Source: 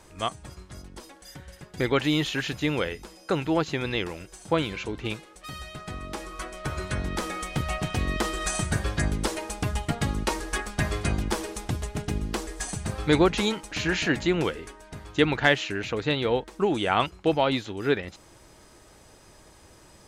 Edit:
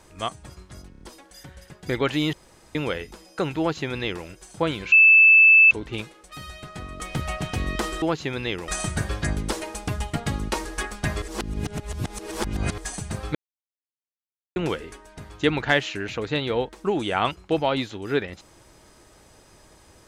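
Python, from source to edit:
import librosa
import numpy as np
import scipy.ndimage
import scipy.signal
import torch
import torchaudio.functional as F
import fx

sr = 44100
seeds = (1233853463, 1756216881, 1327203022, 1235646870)

y = fx.edit(x, sr, fx.stutter(start_s=0.91, slice_s=0.03, count=4),
    fx.room_tone_fill(start_s=2.24, length_s=0.42),
    fx.duplicate(start_s=3.5, length_s=0.66, to_s=8.43),
    fx.insert_tone(at_s=4.83, length_s=0.79, hz=2630.0, db=-9.5),
    fx.cut(start_s=6.12, length_s=1.29),
    fx.reverse_span(start_s=10.97, length_s=1.56),
    fx.silence(start_s=13.1, length_s=1.21), tone=tone)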